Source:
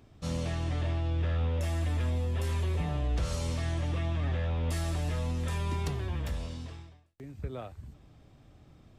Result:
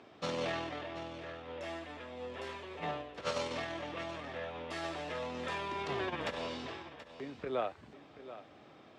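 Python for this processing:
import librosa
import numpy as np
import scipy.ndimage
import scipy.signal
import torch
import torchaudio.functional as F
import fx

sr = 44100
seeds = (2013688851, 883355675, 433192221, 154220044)

y = fx.over_compress(x, sr, threshold_db=-33.0, ratio=-0.5)
y = fx.bandpass_edges(y, sr, low_hz=390.0, high_hz=3700.0)
y = y + 10.0 ** (-14.0 / 20.0) * np.pad(y, (int(730 * sr / 1000.0), 0))[:len(y)]
y = F.gain(torch.from_numpy(y), 5.0).numpy()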